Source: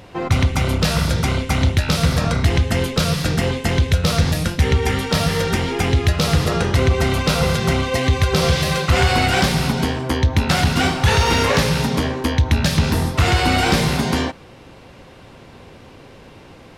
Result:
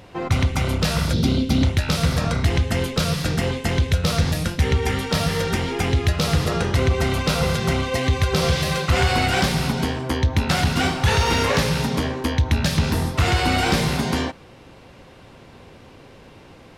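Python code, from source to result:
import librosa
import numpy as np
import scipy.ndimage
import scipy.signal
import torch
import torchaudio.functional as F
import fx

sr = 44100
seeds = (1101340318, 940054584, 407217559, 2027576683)

y = fx.graphic_eq_10(x, sr, hz=(250, 1000, 2000, 4000, 8000), db=(11, -8, -9, 9, -7), at=(1.13, 1.63))
y = y * 10.0 ** (-3.0 / 20.0)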